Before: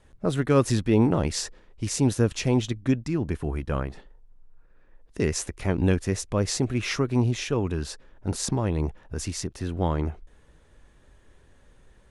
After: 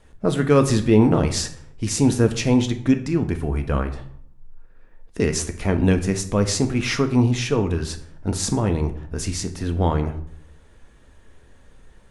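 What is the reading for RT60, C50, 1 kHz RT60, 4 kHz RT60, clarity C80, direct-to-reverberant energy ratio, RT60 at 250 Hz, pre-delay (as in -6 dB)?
0.60 s, 12.5 dB, 0.65 s, 0.45 s, 16.0 dB, 6.5 dB, 0.80 s, 4 ms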